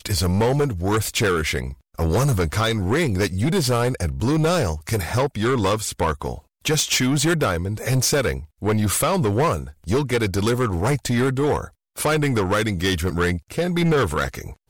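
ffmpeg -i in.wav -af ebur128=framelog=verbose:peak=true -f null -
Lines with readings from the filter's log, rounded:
Integrated loudness:
  I:         -21.4 LUFS
  Threshold: -31.5 LUFS
Loudness range:
  LRA:         1.0 LU
  Threshold: -41.5 LUFS
  LRA low:   -21.9 LUFS
  LRA high:  -20.9 LUFS
True peak:
  Peak:      -12.8 dBFS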